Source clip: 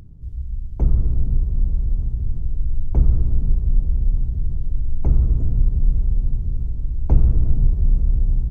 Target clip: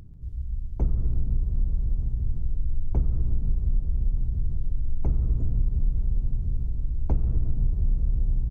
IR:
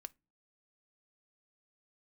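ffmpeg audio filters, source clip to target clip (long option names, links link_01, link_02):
-filter_complex "[0:a]asplit=2[link_01][link_02];[link_02]aecho=0:1:139:0.119[link_03];[link_01][link_03]amix=inputs=2:normalize=0,acompressor=threshold=-14dB:ratio=6,volume=-3.5dB"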